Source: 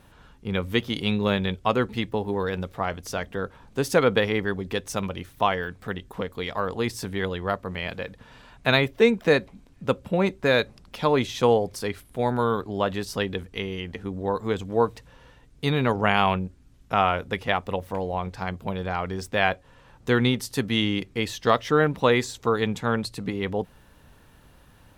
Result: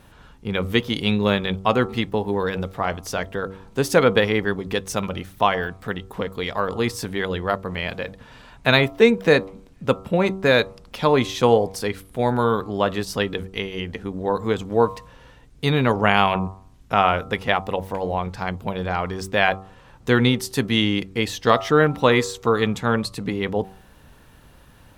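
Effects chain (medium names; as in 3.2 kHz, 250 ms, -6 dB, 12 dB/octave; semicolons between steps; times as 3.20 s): de-hum 95.84 Hz, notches 14; trim +4 dB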